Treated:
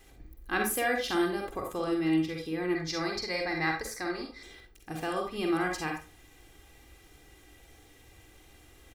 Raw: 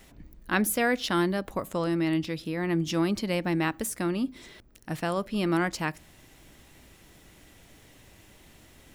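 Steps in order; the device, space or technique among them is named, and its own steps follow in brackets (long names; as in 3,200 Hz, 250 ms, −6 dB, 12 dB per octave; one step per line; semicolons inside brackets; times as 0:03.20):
microphone above a desk (comb filter 2.5 ms, depth 63%; convolution reverb RT60 0.35 s, pre-delay 42 ms, DRR 1 dB)
0:02.75–0:04.43: drawn EQ curve 150 Hz 0 dB, 210 Hz −10 dB, 570 Hz +1 dB, 1,300 Hz +1 dB, 2,100 Hz +8 dB, 3,000 Hz −11 dB, 4,400 Hz +11 dB, 8,600 Hz −7 dB
level −6 dB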